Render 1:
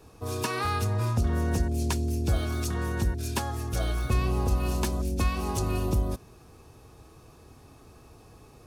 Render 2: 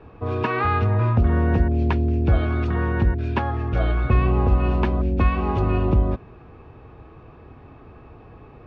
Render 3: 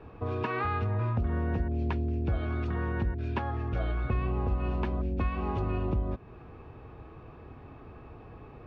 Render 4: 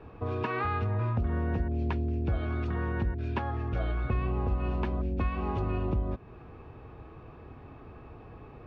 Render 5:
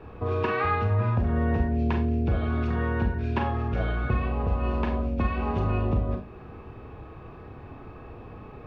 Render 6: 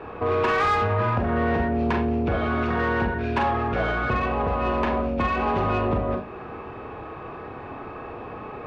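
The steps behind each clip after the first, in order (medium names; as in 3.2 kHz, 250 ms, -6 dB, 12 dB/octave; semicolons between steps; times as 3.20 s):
low-pass 2.6 kHz 24 dB/octave; trim +7.5 dB
compression 2:1, threshold -29 dBFS, peak gain reduction 9 dB; trim -3 dB
no audible change
Schroeder reverb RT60 0.37 s, combs from 30 ms, DRR 3.5 dB; trim +3.5 dB
overdrive pedal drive 20 dB, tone 1.8 kHz, clips at -13 dBFS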